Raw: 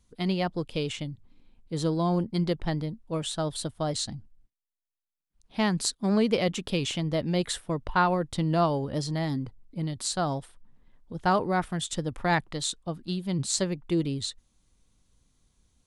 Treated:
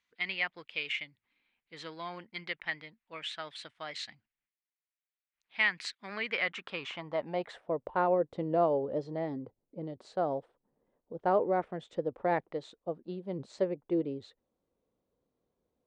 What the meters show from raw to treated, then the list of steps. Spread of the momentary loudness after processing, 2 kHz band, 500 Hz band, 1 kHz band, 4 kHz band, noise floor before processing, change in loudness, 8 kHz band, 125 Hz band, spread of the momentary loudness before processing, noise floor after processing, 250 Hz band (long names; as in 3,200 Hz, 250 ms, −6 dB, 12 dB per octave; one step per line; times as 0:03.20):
14 LU, +0.5 dB, −2.0 dB, −5.0 dB, −7.5 dB, below −85 dBFS, −5.5 dB, below −20 dB, −15.5 dB, 10 LU, below −85 dBFS, −10.5 dB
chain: low-pass filter 6,800 Hz 12 dB per octave
dynamic equaliser 2,200 Hz, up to +7 dB, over −48 dBFS, Q 1.8
band-pass filter sweep 2,100 Hz → 500 Hz, 0:06.10–0:07.92
level +3.5 dB